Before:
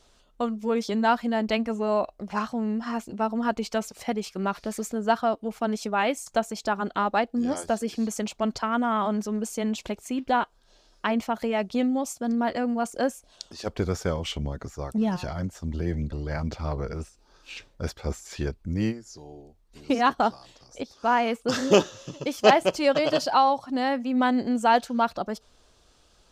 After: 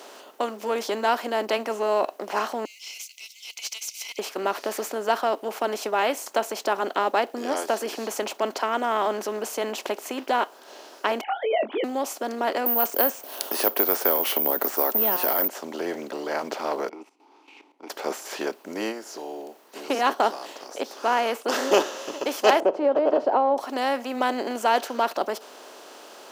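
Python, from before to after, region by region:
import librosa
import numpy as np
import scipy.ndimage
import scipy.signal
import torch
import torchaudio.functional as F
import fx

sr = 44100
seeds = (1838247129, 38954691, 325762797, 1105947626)

y = fx.chain(x, sr, fx.brickwall_highpass(low_hz=2000.0),
    fx.peak_eq(hz=6100.0, db=13.5, octaves=0.48),
    fx.doppler_dist(depth_ms=0.1), at=(2.65, 4.19))
y = fx.chain(y, sr, fx.sine_speech(),
    fx.doubler(ms=23.0, db=-9), at=(11.21, 11.84))
y = fx.chain(y, sr, fx.resample_bad(factor=3, down='filtered', up='zero_stuff'),
    fx.band_squash(depth_pct=70), at=(12.66, 15.48))
y = fx.chain(y, sr, fx.vowel_filter(vowel='u'),
    fx.level_steps(step_db=16), at=(16.89, 17.9))
y = fx.chain(y, sr, fx.lowpass_res(hz=550.0, q=1.5),
    fx.band_squash(depth_pct=100), at=(22.6, 23.58))
y = fx.bin_compress(y, sr, power=0.6)
y = scipy.signal.sosfilt(scipy.signal.butter(4, 300.0, 'highpass', fs=sr, output='sos'), y)
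y = y * librosa.db_to_amplitude(-3.0)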